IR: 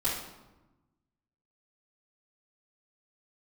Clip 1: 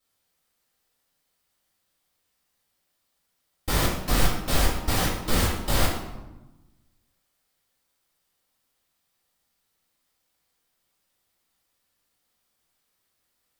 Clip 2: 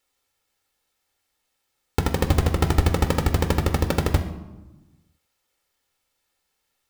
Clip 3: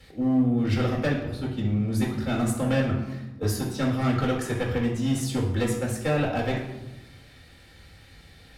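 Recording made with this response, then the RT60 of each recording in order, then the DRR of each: 1; 1.1, 1.1, 1.1 seconds; −9.0, 6.0, −2.5 decibels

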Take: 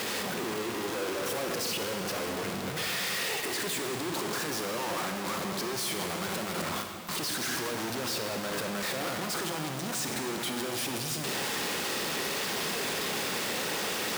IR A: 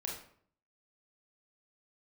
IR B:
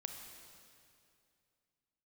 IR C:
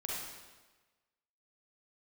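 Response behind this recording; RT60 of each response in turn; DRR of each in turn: B; 0.60, 2.5, 1.3 seconds; −1.5, 4.0, −5.0 decibels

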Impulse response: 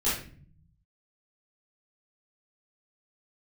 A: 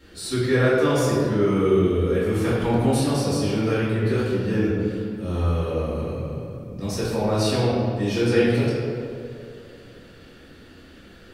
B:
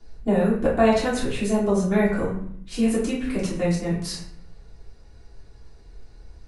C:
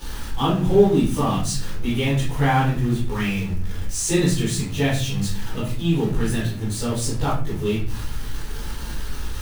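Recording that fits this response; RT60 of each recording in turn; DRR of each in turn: C; 2.6, 0.60, 0.45 seconds; −11.0, −8.0, −11.5 decibels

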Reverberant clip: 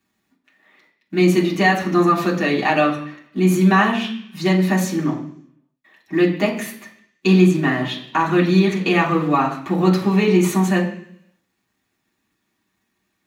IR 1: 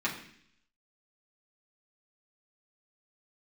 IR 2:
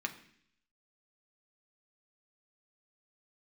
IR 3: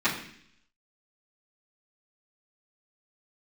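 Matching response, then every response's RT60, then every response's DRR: 1; 0.60, 0.60, 0.60 seconds; −6.0, 3.5, −14.5 decibels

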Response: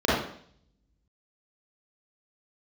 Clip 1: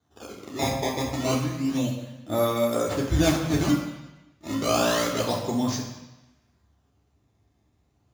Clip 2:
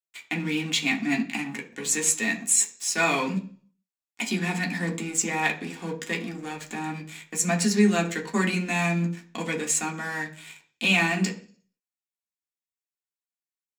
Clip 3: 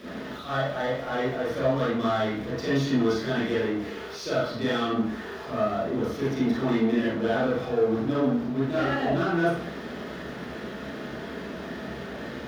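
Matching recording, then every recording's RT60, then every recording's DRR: 3; 1.0, 0.45, 0.60 seconds; −4.0, −1.0, −10.0 decibels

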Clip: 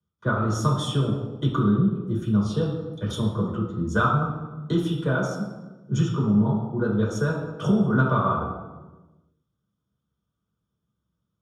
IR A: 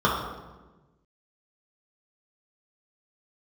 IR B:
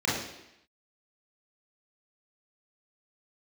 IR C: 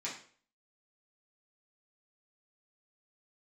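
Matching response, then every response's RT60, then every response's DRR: A; 1.2, 0.85, 0.45 seconds; −6.0, −7.5, −8.0 decibels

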